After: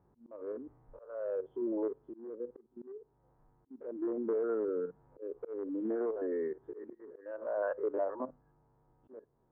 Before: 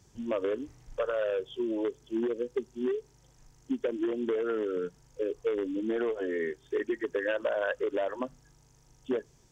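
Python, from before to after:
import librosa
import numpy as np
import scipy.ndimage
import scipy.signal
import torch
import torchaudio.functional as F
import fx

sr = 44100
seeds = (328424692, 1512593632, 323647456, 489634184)

y = fx.spec_steps(x, sr, hold_ms=50)
y = scipy.signal.sosfilt(scipy.signal.butter(4, 1200.0, 'lowpass', fs=sr, output='sos'), y)
y = fx.auto_swell(y, sr, attack_ms=492.0)
y = fx.low_shelf(y, sr, hz=190.0, db=-10.5)
y = fx.band_squash(y, sr, depth_pct=70, at=(4.68, 6.93))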